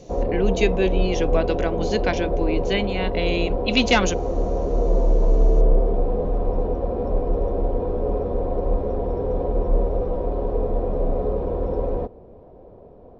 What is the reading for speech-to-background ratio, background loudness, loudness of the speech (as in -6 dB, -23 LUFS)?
0.0 dB, -24.5 LUFS, -24.5 LUFS